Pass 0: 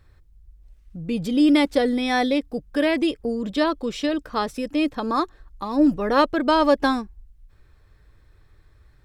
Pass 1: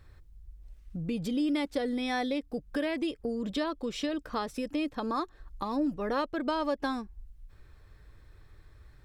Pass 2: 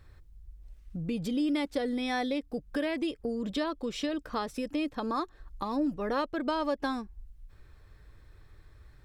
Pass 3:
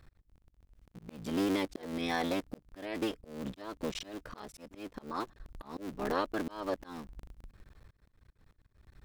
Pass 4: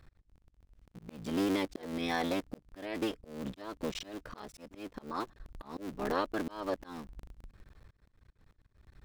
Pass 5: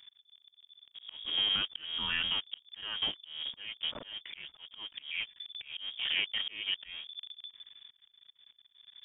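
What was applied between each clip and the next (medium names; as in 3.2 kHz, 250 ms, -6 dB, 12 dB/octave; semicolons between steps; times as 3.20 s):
compression 2.5:1, threshold -33 dBFS, peak gain reduction 14 dB
no audible change
cycle switcher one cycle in 3, muted; hum 60 Hz, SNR 34 dB; slow attack 282 ms
median filter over 3 samples
frequency inversion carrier 3.5 kHz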